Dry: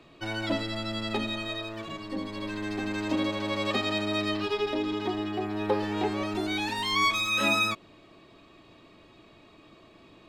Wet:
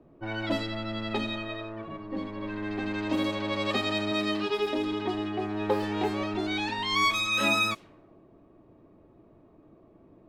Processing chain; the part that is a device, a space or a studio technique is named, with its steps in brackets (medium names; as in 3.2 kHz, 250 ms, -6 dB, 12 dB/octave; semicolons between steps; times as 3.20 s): 4.11–4.77 s: resonant low shelf 110 Hz -9.5 dB, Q 1.5; cassette deck with a dynamic noise filter (white noise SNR 26 dB; level-controlled noise filter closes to 550 Hz, open at -23 dBFS)